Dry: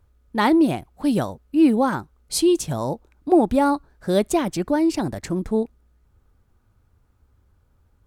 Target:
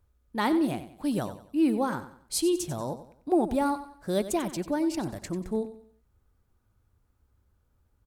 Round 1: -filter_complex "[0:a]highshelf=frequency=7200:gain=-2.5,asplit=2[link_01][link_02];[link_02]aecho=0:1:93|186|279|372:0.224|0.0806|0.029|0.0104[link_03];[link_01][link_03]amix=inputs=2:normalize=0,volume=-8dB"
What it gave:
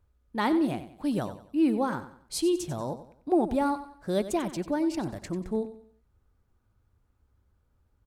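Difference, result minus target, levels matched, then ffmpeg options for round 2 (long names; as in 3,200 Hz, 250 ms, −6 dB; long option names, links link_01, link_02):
8,000 Hz band −4.0 dB
-filter_complex "[0:a]highshelf=frequency=7200:gain=5.5,asplit=2[link_01][link_02];[link_02]aecho=0:1:93|186|279|372:0.224|0.0806|0.029|0.0104[link_03];[link_01][link_03]amix=inputs=2:normalize=0,volume=-8dB"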